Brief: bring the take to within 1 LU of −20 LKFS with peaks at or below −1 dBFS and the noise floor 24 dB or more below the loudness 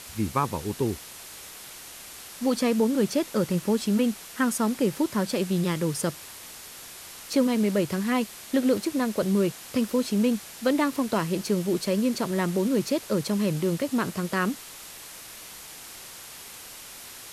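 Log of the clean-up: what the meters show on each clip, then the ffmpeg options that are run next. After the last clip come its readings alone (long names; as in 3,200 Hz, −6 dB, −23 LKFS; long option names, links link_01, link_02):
background noise floor −43 dBFS; target noise floor −50 dBFS; integrated loudness −26.0 LKFS; sample peak −11.0 dBFS; target loudness −20.0 LKFS
→ -af "afftdn=noise_reduction=7:noise_floor=-43"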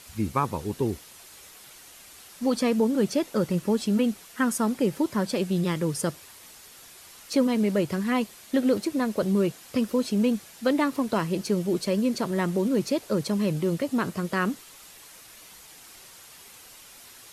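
background noise floor −49 dBFS; target noise floor −50 dBFS
→ -af "afftdn=noise_reduction=6:noise_floor=-49"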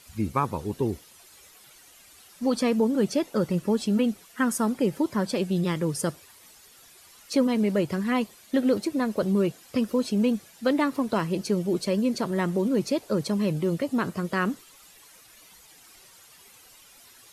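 background noise floor −53 dBFS; integrated loudness −26.5 LKFS; sample peak −11.5 dBFS; target loudness −20.0 LKFS
→ -af "volume=6.5dB"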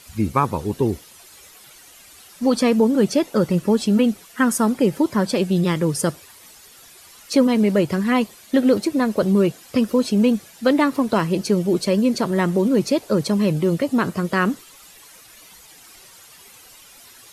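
integrated loudness −20.0 LKFS; sample peak −5.0 dBFS; background noise floor −47 dBFS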